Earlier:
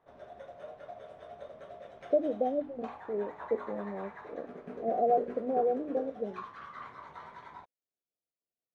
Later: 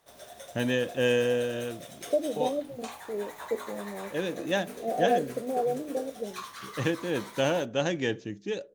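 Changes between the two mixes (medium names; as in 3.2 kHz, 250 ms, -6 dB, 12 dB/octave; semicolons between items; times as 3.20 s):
first voice: unmuted; master: remove low-pass 1.4 kHz 12 dB/octave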